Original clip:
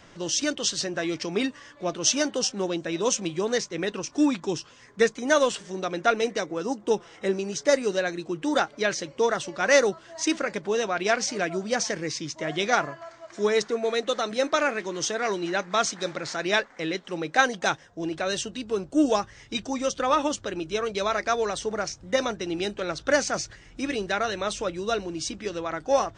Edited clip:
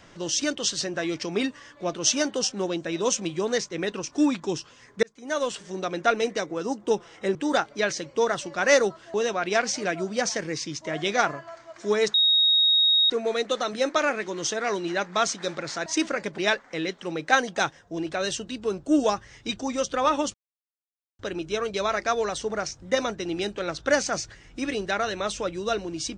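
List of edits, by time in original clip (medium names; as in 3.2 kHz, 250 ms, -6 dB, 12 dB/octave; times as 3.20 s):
5.03–5.74 s: fade in
7.35–8.37 s: delete
10.16–10.68 s: move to 16.44 s
13.68 s: add tone 3.76 kHz -16.5 dBFS 0.96 s
20.40 s: insert silence 0.85 s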